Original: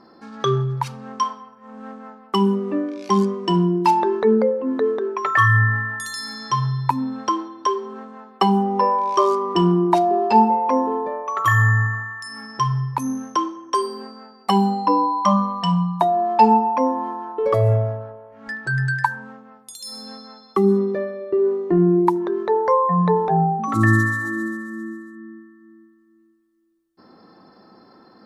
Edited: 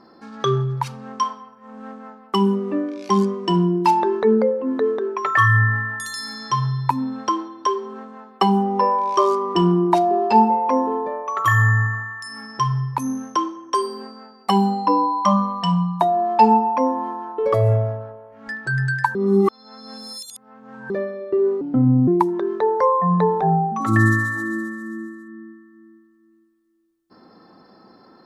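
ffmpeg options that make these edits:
ffmpeg -i in.wav -filter_complex "[0:a]asplit=5[link_01][link_02][link_03][link_04][link_05];[link_01]atrim=end=19.152[link_06];[link_02]atrim=start=19.148:end=20.902,asetpts=PTS-STARTPTS,areverse[link_07];[link_03]atrim=start=20.898:end=21.614[link_08];[link_04]atrim=start=21.61:end=21.95,asetpts=PTS-STARTPTS,asetrate=32193,aresample=44100[link_09];[link_05]atrim=start=21.946[link_10];[link_06][link_07]acrossfade=duration=0.004:curve1=hsin:curve2=hsin[link_11];[link_11][link_08]acrossfade=duration=0.004:curve1=hsin:curve2=hsin[link_12];[link_12][link_09]acrossfade=duration=0.004:curve1=hsin:curve2=hsin[link_13];[link_13][link_10]acrossfade=duration=0.004:curve1=hsin:curve2=hsin" out.wav

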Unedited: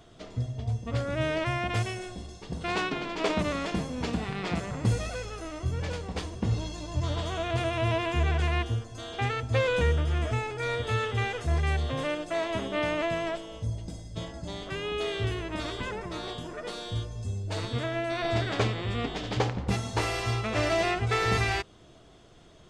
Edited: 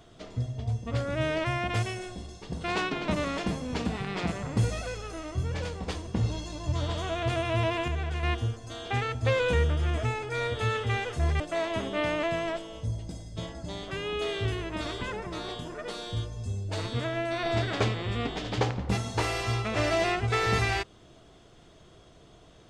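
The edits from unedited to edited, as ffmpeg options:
ffmpeg -i in.wav -filter_complex "[0:a]asplit=5[link_01][link_02][link_03][link_04][link_05];[link_01]atrim=end=3.082[link_06];[link_02]atrim=start=3.358:end=8.162[link_07];[link_03]atrim=start=8.158:end=8.512,asetpts=PTS-STARTPTS,volume=-5.5dB[link_08];[link_04]atrim=start=8.508:end=11.682[link_09];[link_05]atrim=start=12.188[link_10];[link_06][link_07]acrossfade=duration=0.004:curve1=hsin:curve2=hsin[link_11];[link_11][link_08]acrossfade=duration=0.004:curve1=hsin:curve2=hsin[link_12];[link_12][link_09]acrossfade=duration=0.004:curve1=hsin:curve2=hsin[link_13];[link_13][link_10]acrossfade=duration=0.004:curve1=hsin:curve2=hsin" out.wav

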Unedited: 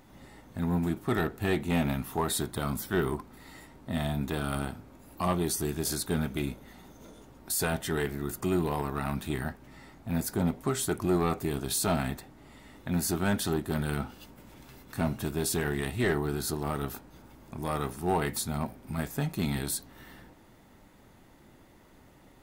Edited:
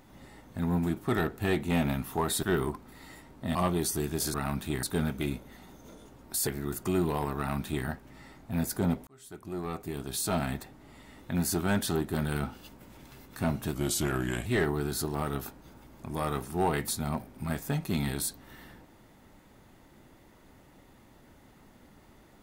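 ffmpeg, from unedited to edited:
ffmpeg -i in.wav -filter_complex "[0:a]asplit=9[link_01][link_02][link_03][link_04][link_05][link_06][link_07][link_08][link_09];[link_01]atrim=end=2.432[link_10];[link_02]atrim=start=2.878:end=4.002[link_11];[link_03]atrim=start=5.198:end=5.992[link_12];[link_04]atrim=start=8.938:end=9.432[link_13];[link_05]atrim=start=5.988:end=7.632[link_14];[link_06]atrim=start=8.038:end=10.64,asetpts=PTS-STARTPTS,afade=type=out:start_time=2.598:duration=0.004:curve=hsin[link_15];[link_07]atrim=start=10.64:end=15.314,asetpts=PTS-STARTPTS,afade=type=in:duration=1.58[link_16];[link_08]atrim=start=15.31:end=15.94,asetpts=PTS-STARTPTS,asetrate=38808,aresample=44100[link_17];[link_09]atrim=start=15.936[link_18];[link_10][link_11]acrossfade=duration=0.004:curve1=hsin:curve2=hsin[link_19];[link_19][link_12]acrossfade=duration=0.004:curve1=hsin:curve2=hsin[link_20];[link_20][link_13]acrossfade=duration=0.004:curve1=hsin:curve2=hsin[link_21];[link_21][link_14]acrossfade=duration=0.004:curve1=hsin:curve2=hsin[link_22];[link_15][link_16]concat=n=2:v=0:a=1[link_23];[link_22][link_23]acrossfade=duration=0.004:curve1=hsin:curve2=hsin[link_24];[link_24][link_17]acrossfade=duration=0.004:curve1=hsin:curve2=hsin[link_25];[link_25][link_18]acrossfade=duration=0.004:curve1=hsin:curve2=hsin" out.wav

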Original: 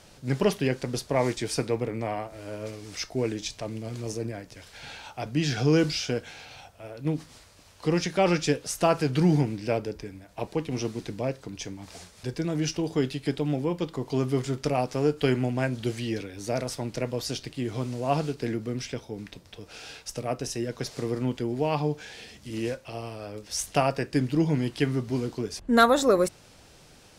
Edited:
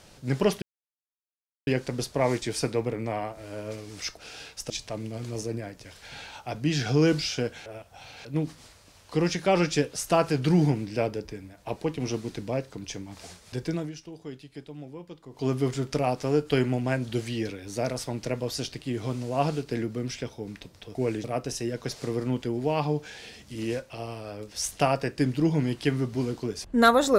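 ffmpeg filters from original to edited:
ffmpeg -i in.wav -filter_complex "[0:a]asplit=10[link_01][link_02][link_03][link_04][link_05][link_06][link_07][link_08][link_09][link_10];[link_01]atrim=end=0.62,asetpts=PTS-STARTPTS,afade=type=out:start_time=0.616:duration=0.004:curve=hsin,apad=pad_dur=1.05[link_11];[link_02]atrim=start=0.62:end=3.122,asetpts=PTS-STARTPTS,afade=type=in:duration=0.004:curve=hsin[link_12];[link_03]atrim=start=19.658:end=20.192[link_13];[link_04]atrim=start=3.408:end=6.372[link_14];[link_05]atrim=start=6.368:end=6.962,asetpts=PTS-STARTPTS,areverse[link_15];[link_06]atrim=start=6.958:end=12.63,asetpts=PTS-STARTPTS,afade=type=out:start_time=5.502:duration=0.17:silence=0.199526[link_16];[link_07]atrim=start=12.63:end=14.02,asetpts=PTS-STARTPTS,volume=-14dB[link_17];[link_08]atrim=start=14.02:end=19.662,asetpts=PTS-STARTPTS,afade=type=in:duration=0.17:silence=0.199526[link_18];[link_09]atrim=start=3.118:end=3.412[link_19];[link_10]atrim=start=20.188[link_20];[link_11][link_12]concat=n=2:v=0:a=1[link_21];[link_21][link_13]acrossfade=duration=0.004:curve1=hsin:curve2=hsin[link_22];[link_22][link_14]acrossfade=duration=0.004:curve1=hsin:curve2=hsin[link_23];[link_23][link_15]acrossfade=duration=0.004:curve1=hsin:curve2=hsin[link_24];[link_16][link_17][link_18]concat=n=3:v=0:a=1[link_25];[link_24][link_25]acrossfade=duration=0.004:curve1=hsin:curve2=hsin[link_26];[link_26][link_19]acrossfade=duration=0.004:curve1=hsin:curve2=hsin[link_27];[link_27][link_20]acrossfade=duration=0.004:curve1=hsin:curve2=hsin" out.wav

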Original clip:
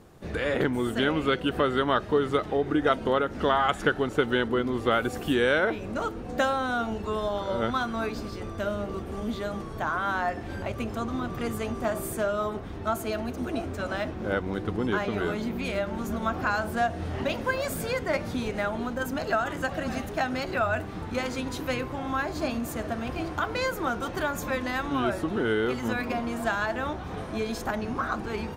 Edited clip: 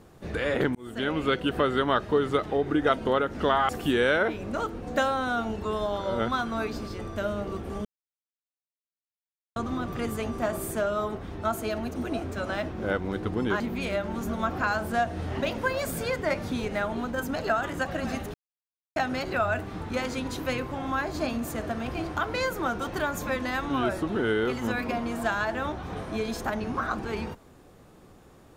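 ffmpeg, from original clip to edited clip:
ffmpeg -i in.wav -filter_complex "[0:a]asplit=7[link_01][link_02][link_03][link_04][link_05][link_06][link_07];[link_01]atrim=end=0.75,asetpts=PTS-STARTPTS,afade=type=out:start_time=0.746:duration=0.004:curve=hsin[link_08];[link_02]atrim=start=0.75:end=3.692,asetpts=PTS-STARTPTS,afade=type=in:duration=0.67:curve=qsin[link_09];[link_03]atrim=start=5.108:end=9.27,asetpts=PTS-STARTPTS,afade=type=out:start_time=4.158:duration=0.004:curve=hsin[link_10];[link_04]atrim=start=9.27:end=10.98,asetpts=PTS-STARTPTS,volume=0[link_11];[link_05]atrim=start=10.98:end=15.022,asetpts=PTS-STARTPTS,afade=type=in:duration=0.004:curve=hsin[link_12];[link_06]atrim=start=15.428:end=20.17,asetpts=PTS-STARTPTS,afade=type=out:start_time=4.738:duration=0.004:curve=hsin,apad=pad_dur=0.62[link_13];[link_07]atrim=start=20.17,asetpts=PTS-STARTPTS,afade=type=in:duration=0.004:curve=hsin[link_14];[link_08][link_09]concat=n=2:v=0:a=1[link_15];[link_10][link_11][link_12]concat=n=3:v=0:a=1[link_16];[link_15][link_16]acrossfade=duration=0.004:curve1=hsin:curve2=hsin[link_17];[link_13][link_14]concat=n=2:v=0:a=1[link_18];[link_17][link_18]acrossfade=duration=0.004:curve1=hsin:curve2=hsin" out.wav

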